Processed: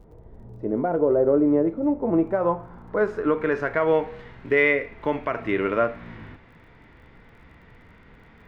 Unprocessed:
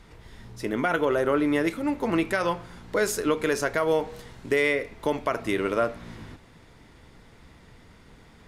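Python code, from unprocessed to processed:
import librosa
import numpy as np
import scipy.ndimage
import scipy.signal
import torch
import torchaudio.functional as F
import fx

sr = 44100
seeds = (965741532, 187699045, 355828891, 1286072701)

y = fx.filter_sweep_lowpass(x, sr, from_hz=610.0, to_hz=2200.0, start_s=1.98, end_s=3.95, q=1.4)
y = fx.dmg_crackle(y, sr, seeds[0], per_s=27.0, level_db=-51.0)
y = fx.hpss(y, sr, part='harmonic', gain_db=6)
y = y * librosa.db_to_amplitude(-3.0)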